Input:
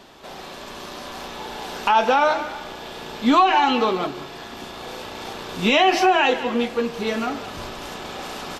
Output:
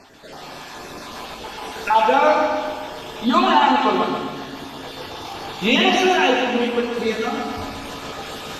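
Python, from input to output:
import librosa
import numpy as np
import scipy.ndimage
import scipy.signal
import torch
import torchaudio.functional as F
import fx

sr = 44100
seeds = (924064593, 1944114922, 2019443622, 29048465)

y = fx.spec_dropout(x, sr, seeds[0], share_pct=31)
y = fx.notch(y, sr, hz=8000.0, q=5.7, at=(4.31, 6.35))
y = fx.echo_feedback(y, sr, ms=134, feedback_pct=55, wet_db=-5.5)
y = fx.rev_fdn(y, sr, rt60_s=1.2, lf_ratio=1.3, hf_ratio=0.9, size_ms=66.0, drr_db=2.5)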